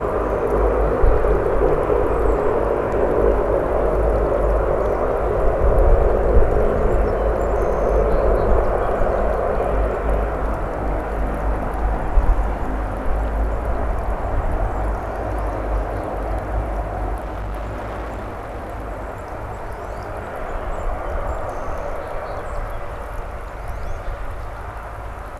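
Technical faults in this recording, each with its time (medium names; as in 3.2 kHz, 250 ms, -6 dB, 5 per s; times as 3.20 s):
17.15–18.84 s: clipped -23.5 dBFS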